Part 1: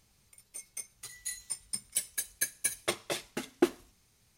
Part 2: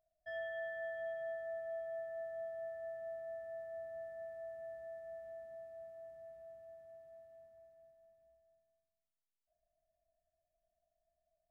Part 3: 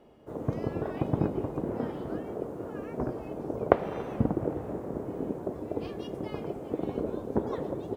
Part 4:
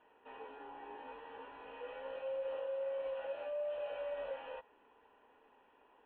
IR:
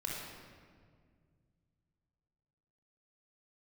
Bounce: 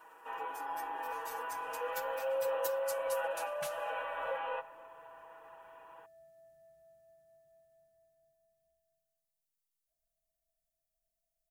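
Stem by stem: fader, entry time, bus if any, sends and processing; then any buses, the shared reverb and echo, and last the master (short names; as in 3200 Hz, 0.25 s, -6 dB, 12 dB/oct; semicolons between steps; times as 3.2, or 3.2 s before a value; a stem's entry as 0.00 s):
-9.5 dB, 0.00 s, no send, spectral gate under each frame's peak -20 dB weak
-3.5 dB, 0.40 s, no send, bell 780 Hz -10.5 dB 2.7 oct; compressor, threshold -56 dBFS, peak gain reduction 8.5 dB
off
-2.5 dB, 0.00 s, send -18 dB, bell 1200 Hz +15 dB 1.6 oct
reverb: on, RT60 1.9 s, pre-delay 23 ms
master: high shelf 6000 Hz +11 dB; comb 6.1 ms, depth 73%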